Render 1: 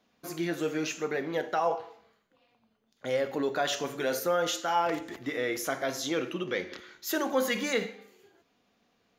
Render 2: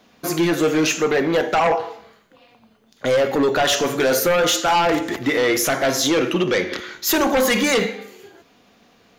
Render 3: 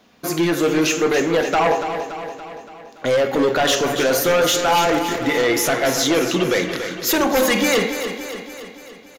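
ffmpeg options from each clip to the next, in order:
-filter_complex "[0:a]asplit=2[s0][s1];[s1]alimiter=limit=0.0708:level=0:latency=1:release=209,volume=0.841[s2];[s0][s2]amix=inputs=2:normalize=0,aeval=exprs='0.224*sin(PI/2*2.24*val(0)/0.224)':c=same"
-af "aecho=1:1:285|570|855|1140|1425|1710|1995:0.355|0.202|0.115|0.0657|0.0375|0.0213|0.0122"

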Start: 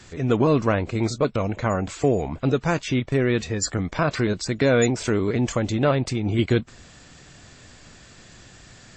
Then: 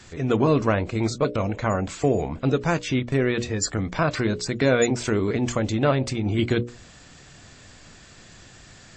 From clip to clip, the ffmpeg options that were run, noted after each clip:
-af "bandreject=f=60:t=h:w=6,bandreject=f=120:t=h:w=6,bandreject=f=180:t=h:w=6,bandreject=f=240:t=h:w=6,bandreject=f=300:t=h:w=6,bandreject=f=360:t=h:w=6,bandreject=f=420:t=h:w=6,bandreject=f=480:t=h:w=6,bandreject=f=540:t=h:w=6,bandreject=f=600:t=h:w=6"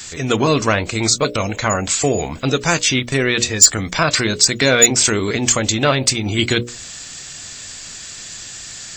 -af "crystalizer=i=8.5:c=0,aeval=exprs='2.11*sin(PI/2*2*val(0)/2.11)':c=same,volume=0.422"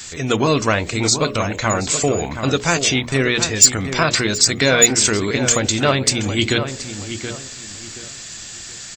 -filter_complex "[0:a]asplit=2[s0][s1];[s1]adelay=726,lowpass=f=2600:p=1,volume=0.355,asplit=2[s2][s3];[s3]adelay=726,lowpass=f=2600:p=1,volume=0.3,asplit=2[s4][s5];[s5]adelay=726,lowpass=f=2600:p=1,volume=0.3[s6];[s0][s2][s4][s6]amix=inputs=4:normalize=0,volume=0.891"

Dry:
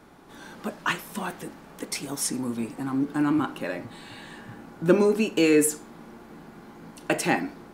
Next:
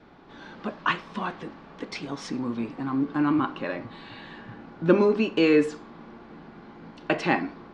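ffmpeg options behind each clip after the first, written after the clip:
-af "lowpass=f=4500:w=0.5412,lowpass=f=4500:w=1.3066,adynamicequalizer=threshold=0.00282:dfrequency=1100:dqfactor=6.9:tfrequency=1100:tqfactor=6.9:attack=5:release=100:ratio=0.375:range=3.5:mode=boostabove:tftype=bell"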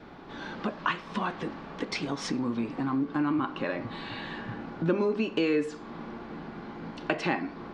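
-af "acompressor=threshold=0.02:ratio=2.5,volume=1.78"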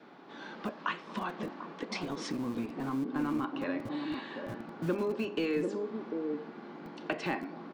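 -filter_complex "[0:a]acrossover=split=160|980|2000[s0][s1][s2][s3];[s0]acrusher=bits=6:mix=0:aa=0.000001[s4];[s1]aecho=1:1:235|744:0.251|0.708[s5];[s4][s5][s2][s3]amix=inputs=4:normalize=0,volume=0.531"

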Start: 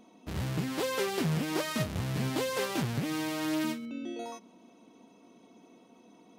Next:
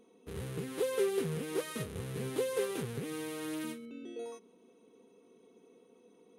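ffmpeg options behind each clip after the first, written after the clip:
-af "superequalizer=7b=3.55:8b=0.631:9b=0.708:14b=0.631:16b=2.51,volume=0.398"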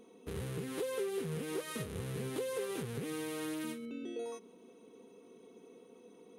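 -filter_complex "[0:a]asplit=2[s0][s1];[s1]alimiter=level_in=1.68:limit=0.0631:level=0:latency=1:release=121,volume=0.596,volume=1.26[s2];[s0][s2]amix=inputs=2:normalize=0,acompressor=threshold=0.0141:ratio=2,volume=0.75"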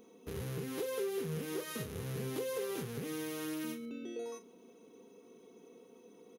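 -filter_complex "[0:a]asplit=2[s0][s1];[s1]adelay=38,volume=0.266[s2];[s0][s2]amix=inputs=2:normalize=0,aexciter=amount=1:drive=7.1:freq=5000,volume=0.891"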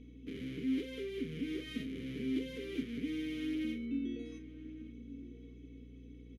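-filter_complex "[0:a]asplit=3[s0][s1][s2];[s0]bandpass=f=270:t=q:w=8,volume=1[s3];[s1]bandpass=f=2290:t=q:w=8,volume=0.501[s4];[s2]bandpass=f=3010:t=q:w=8,volume=0.355[s5];[s3][s4][s5]amix=inputs=3:normalize=0,aeval=exprs='val(0)+0.000501*(sin(2*PI*60*n/s)+sin(2*PI*2*60*n/s)/2+sin(2*PI*3*60*n/s)/3+sin(2*PI*4*60*n/s)/4+sin(2*PI*5*60*n/s)/5)':c=same,asplit=2[s6][s7];[s7]adelay=1166,volume=0.224,highshelf=f=4000:g=-26.2[s8];[s6][s8]amix=inputs=2:normalize=0,volume=3.98"

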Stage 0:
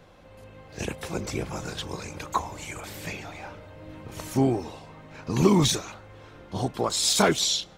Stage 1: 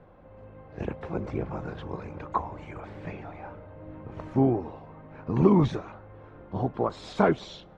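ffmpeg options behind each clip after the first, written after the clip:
-af "lowpass=1300"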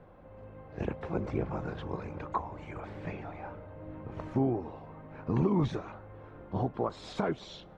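-af "alimiter=limit=0.141:level=0:latency=1:release=422,volume=0.891"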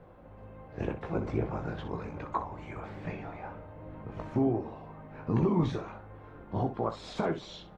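-af "aecho=1:1:18|62:0.422|0.299"

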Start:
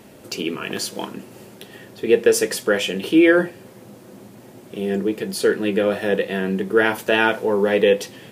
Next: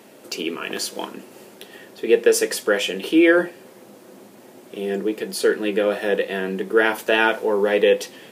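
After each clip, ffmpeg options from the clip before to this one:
-af "highpass=260"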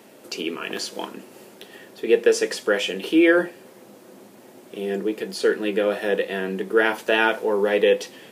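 -filter_complex "[0:a]acrossover=split=7500[s0][s1];[s1]acompressor=threshold=0.00708:ratio=4:attack=1:release=60[s2];[s0][s2]amix=inputs=2:normalize=0,volume=0.841"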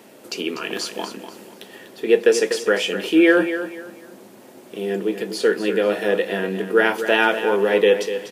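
-af "aecho=1:1:245|490|735:0.299|0.0836|0.0234,volume=1.26"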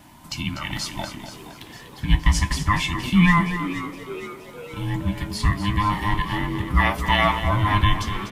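-filter_complex "[0:a]afftfilt=real='real(if(between(b,1,1008),(2*floor((b-1)/24)+1)*24-b,b),0)':imag='imag(if(between(b,1,1008),(2*floor((b-1)/24)+1)*24-b,b),0)*if(between(b,1,1008),-1,1)':win_size=2048:overlap=0.75,asplit=7[s0][s1][s2][s3][s4][s5][s6];[s1]adelay=469,afreqshift=99,volume=0.188[s7];[s2]adelay=938,afreqshift=198,volume=0.11[s8];[s3]adelay=1407,afreqshift=297,volume=0.0631[s9];[s4]adelay=1876,afreqshift=396,volume=0.0367[s10];[s5]adelay=2345,afreqshift=495,volume=0.0214[s11];[s6]adelay=2814,afreqshift=594,volume=0.0123[s12];[s0][s7][s8][s9][s10][s11][s12]amix=inputs=7:normalize=0,volume=0.841"

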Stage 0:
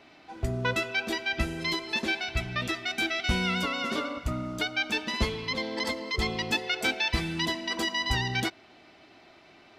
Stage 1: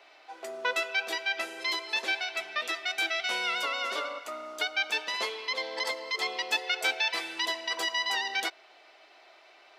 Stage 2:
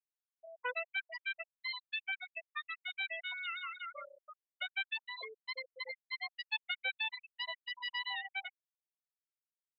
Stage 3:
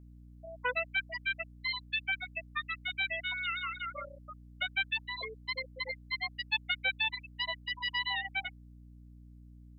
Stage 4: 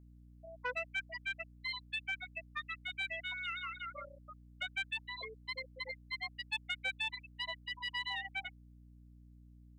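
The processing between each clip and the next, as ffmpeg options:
-af "highpass=f=470:w=0.5412,highpass=f=470:w=1.3066"
-af "afftfilt=real='re*gte(hypot(re,im),0.126)':imag='im*gte(hypot(re,im),0.126)':win_size=1024:overlap=0.75,volume=0.422"
-af "aeval=exprs='val(0)+0.00141*(sin(2*PI*60*n/s)+sin(2*PI*2*60*n/s)/2+sin(2*PI*3*60*n/s)/3+sin(2*PI*4*60*n/s)/4+sin(2*PI*5*60*n/s)/5)':c=same,volume=1.88"
-af "asoftclip=type=tanh:threshold=0.0944,volume=0.562"

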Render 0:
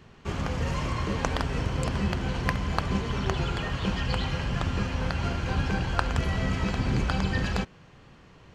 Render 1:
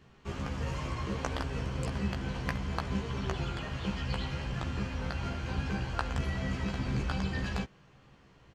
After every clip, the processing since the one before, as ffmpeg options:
-filter_complex "[0:a]asplit=2[s0][s1];[s1]adelay=15,volume=0.631[s2];[s0][s2]amix=inputs=2:normalize=0,volume=0.398"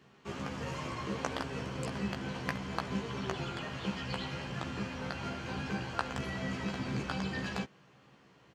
-af "highpass=150"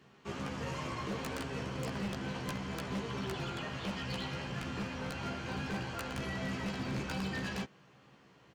-af "aeval=exprs='0.0299*(abs(mod(val(0)/0.0299+3,4)-2)-1)':c=same"

